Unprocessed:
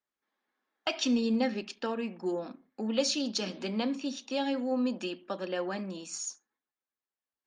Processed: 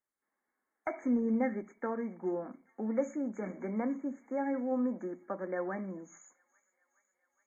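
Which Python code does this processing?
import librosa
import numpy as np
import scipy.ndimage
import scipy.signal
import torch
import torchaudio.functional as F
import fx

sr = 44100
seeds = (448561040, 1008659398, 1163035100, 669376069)

y = fx.freq_compress(x, sr, knee_hz=3900.0, ratio=1.5)
y = fx.brickwall_bandstop(y, sr, low_hz=2300.0, high_hz=6100.0)
y = fx.echo_wet_highpass(y, sr, ms=417, feedback_pct=76, hz=2200.0, wet_db=-21)
y = y * librosa.db_to_amplitude(-2.0)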